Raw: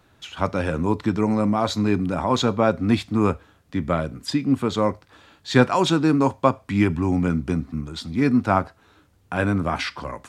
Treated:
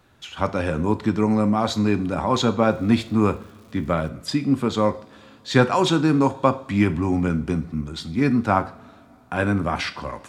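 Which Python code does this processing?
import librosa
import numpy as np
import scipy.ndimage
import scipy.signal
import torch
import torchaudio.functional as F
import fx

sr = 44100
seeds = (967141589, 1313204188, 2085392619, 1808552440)

y = fx.rev_double_slope(x, sr, seeds[0], early_s=0.45, late_s=3.7, knee_db=-22, drr_db=10.5)
y = fx.dmg_crackle(y, sr, seeds[1], per_s=280.0, level_db=-43.0, at=(2.58, 4.08), fade=0.02)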